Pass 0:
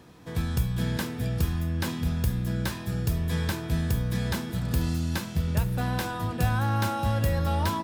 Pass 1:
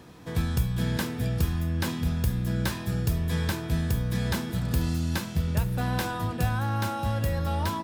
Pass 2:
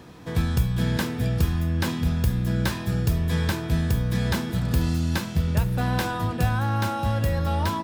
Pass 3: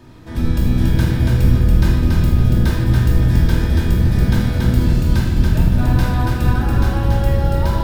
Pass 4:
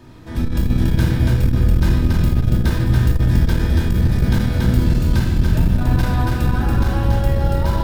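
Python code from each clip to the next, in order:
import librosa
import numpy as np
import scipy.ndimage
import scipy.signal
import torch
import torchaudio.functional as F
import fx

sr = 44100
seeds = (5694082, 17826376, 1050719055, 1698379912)

y1 = fx.rider(x, sr, range_db=3, speed_s=0.5)
y2 = fx.peak_eq(y1, sr, hz=12000.0, db=-3.5, octaves=1.4)
y2 = y2 * 10.0 ** (3.5 / 20.0)
y3 = fx.octave_divider(y2, sr, octaves=1, level_db=2.0)
y3 = fx.echo_feedback(y3, sr, ms=282, feedback_pct=31, wet_db=-3)
y3 = fx.room_shoebox(y3, sr, seeds[0], volume_m3=1200.0, walls='mixed', distance_m=2.7)
y3 = y3 * 10.0 ** (-4.0 / 20.0)
y4 = fx.transformer_sat(y3, sr, knee_hz=68.0)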